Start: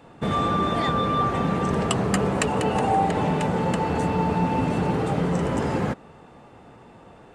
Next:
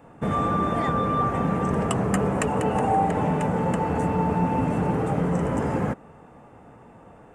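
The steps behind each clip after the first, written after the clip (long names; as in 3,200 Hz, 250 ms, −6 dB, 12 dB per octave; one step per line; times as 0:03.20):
parametric band 4,100 Hz −14 dB 1 octave
notch filter 370 Hz, Q 12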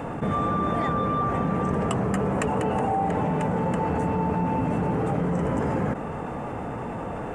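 high-shelf EQ 6,900 Hz −6.5 dB
envelope flattener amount 70%
level −4 dB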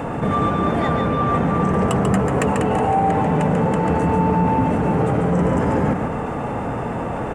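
soft clipping −16.5 dBFS, distortion −22 dB
single-tap delay 141 ms −5.5 dB
level +6.5 dB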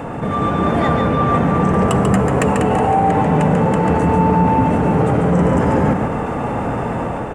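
automatic gain control gain up to 5 dB
on a send at −15 dB: convolution reverb RT60 1.4 s, pre-delay 28 ms
on the sum: level −1 dB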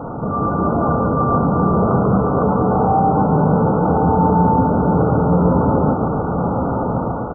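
linear-phase brick-wall low-pass 1,500 Hz
single-tap delay 1,062 ms −7.5 dB
level −1 dB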